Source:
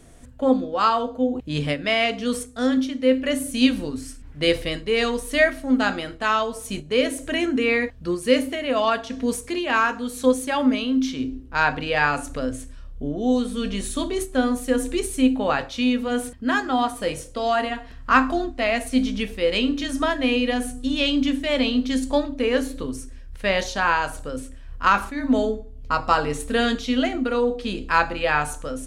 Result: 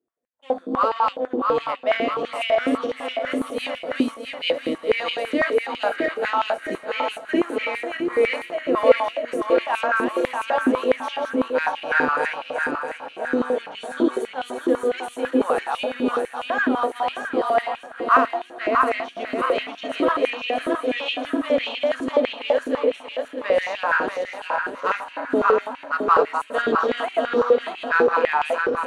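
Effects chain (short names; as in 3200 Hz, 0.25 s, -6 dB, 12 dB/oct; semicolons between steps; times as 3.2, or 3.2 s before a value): regenerating reverse delay 0.319 s, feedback 69%, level -2 dB; expander -21 dBFS; tilt -3 dB/oct; notch 5100 Hz, Q 11; in parallel at -8.5 dB: soft clip -20.5 dBFS, distortion -6 dB; on the sum: vibrato 1.9 Hz 8.3 cents; on a send: swung echo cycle 0.804 s, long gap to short 3:1, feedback 79%, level -23 dB; on the sum: stepped high-pass 12 Hz 360–2700 Hz; gain -7.5 dB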